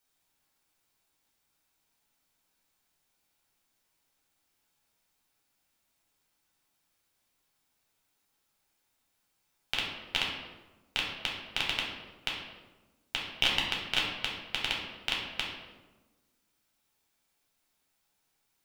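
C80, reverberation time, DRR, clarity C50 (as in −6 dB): 5.5 dB, 1.2 s, −3.5 dB, 2.5 dB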